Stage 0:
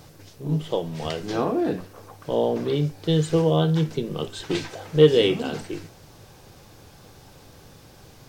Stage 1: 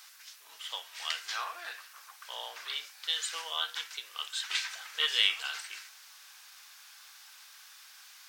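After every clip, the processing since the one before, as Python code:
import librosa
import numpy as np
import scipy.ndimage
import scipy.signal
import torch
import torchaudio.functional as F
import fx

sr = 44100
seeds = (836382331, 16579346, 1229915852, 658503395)

y = scipy.signal.sosfilt(scipy.signal.butter(4, 1300.0, 'highpass', fs=sr, output='sos'), x)
y = y * 10.0 ** (2.0 / 20.0)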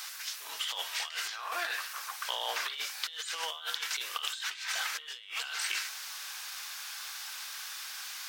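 y = fx.over_compress(x, sr, threshold_db=-44.0, ratio=-1.0)
y = y * 10.0 ** (6.0 / 20.0)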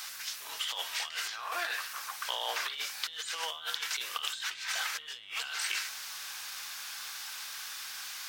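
y = fx.dmg_buzz(x, sr, base_hz=120.0, harmonics=25, level_db=-70.0, tilt_db=-1, odd_only=False)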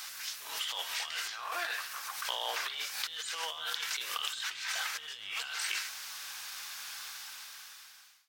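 y = fx.fade_out_tail(x, sr, length_s=1.32)
y = fx.echo_feedback(y, sr, ms=134, feedback_pct=46, wet_db=-23)
y = fx.pre_swell(y, sr, db_per_s=70.0)
y = y * 10.0 ** (-1.5 / 20.0)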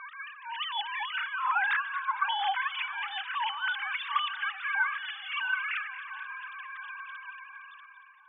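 y = fx.sine_speech(x, sr)
y = fx.bandpass_q(y, sr, hz=1200.0, q=0.92)
y = fx.echo_split(y, sr, split_hz=1400.0, low_ms=686, high_ms=230, feedback_pct=52, wet_db=-13)
y = y * 10.0 ** (7.5 / 20.0)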